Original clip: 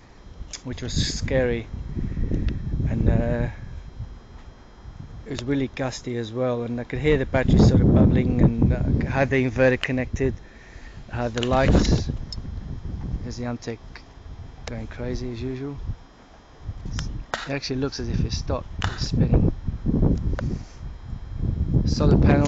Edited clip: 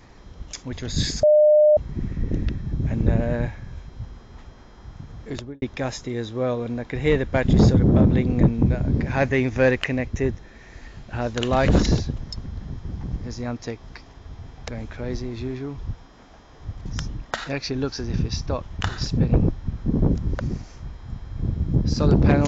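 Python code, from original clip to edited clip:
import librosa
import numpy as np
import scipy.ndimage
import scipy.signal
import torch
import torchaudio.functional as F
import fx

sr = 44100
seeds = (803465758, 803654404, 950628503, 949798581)

y = fx.studio_fade_out(x, sr, start_s=5.3, length_s=0.32)
y = fx.edit(y, sr, fx.bleep(start_s=1.23, length_s=0.54, hz=604.0, db=-11.0), tone=tone)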